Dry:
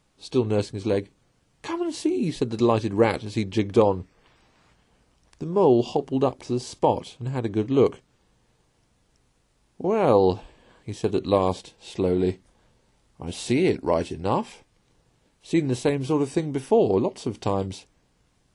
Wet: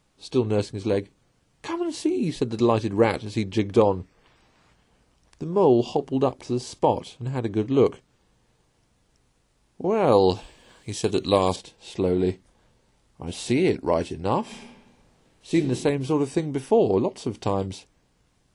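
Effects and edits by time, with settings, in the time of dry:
10.12–11.56 high shelf 2800 Hz +12 dB
14.41–15.54 reverb throw, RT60 1.2 s, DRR -1.5 dB

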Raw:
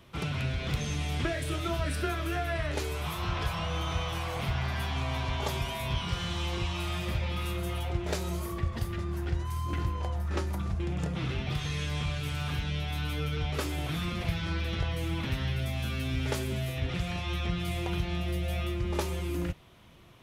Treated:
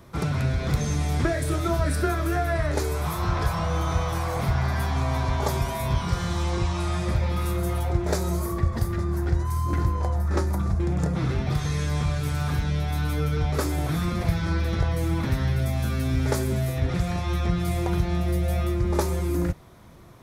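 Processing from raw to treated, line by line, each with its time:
6.44–7.16 LPF 10000 Hz 24 dB/oct
whole clip: bell 2900 Hz -14.5 dB 0.69 oct; gain +7.5 dB

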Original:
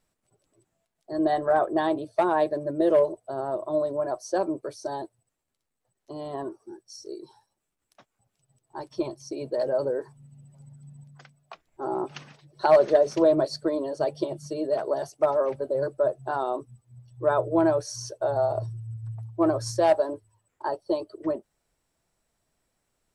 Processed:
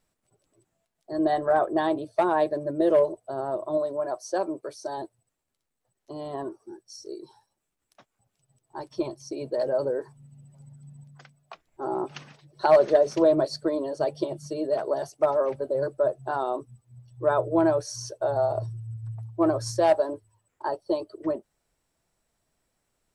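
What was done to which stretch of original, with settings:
3.77–4.98 low shelf 200 Hz -10 dB

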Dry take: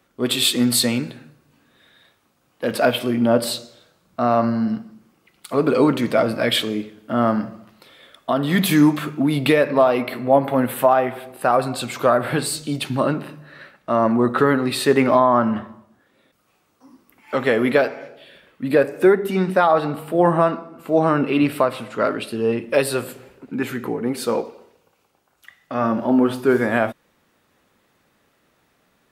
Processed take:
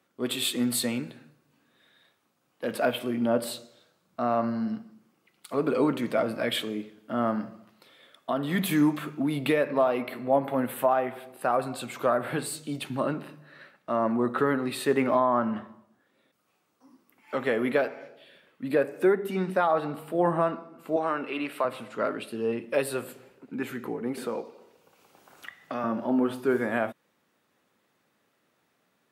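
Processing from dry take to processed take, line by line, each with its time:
20.96–21.65 weighting filter A
24.17–25.84 three-band squash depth 70%
whole clip: HPF 130 Hz; dynamic EQ 5000 Hz, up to -6 dB, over -42 dBFS, Q 1.6; gain -8 dB

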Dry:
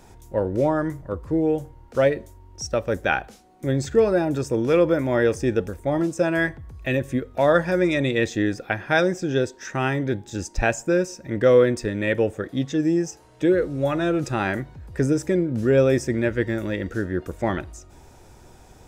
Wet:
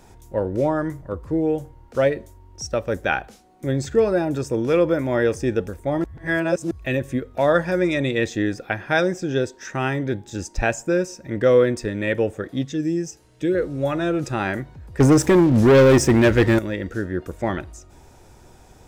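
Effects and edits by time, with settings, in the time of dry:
6.04–6.71 reverse
12.63–13.55 bell 860 Hz -9.5 dB 1.7 oct
15–16.59 sample leveller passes 3

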